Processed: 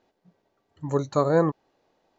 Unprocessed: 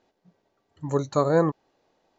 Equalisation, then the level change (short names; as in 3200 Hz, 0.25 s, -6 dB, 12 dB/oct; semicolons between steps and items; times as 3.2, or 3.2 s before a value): high shelf 6200 Hz -4.5 dB; 0.0 dB